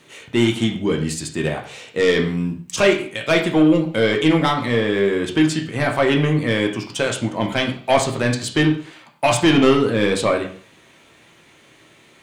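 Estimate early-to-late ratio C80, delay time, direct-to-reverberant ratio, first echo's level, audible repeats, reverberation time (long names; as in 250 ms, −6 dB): 13.0 dB, no echo audible, 1.0 dB, no echo audible, no echo audible, 0.45 s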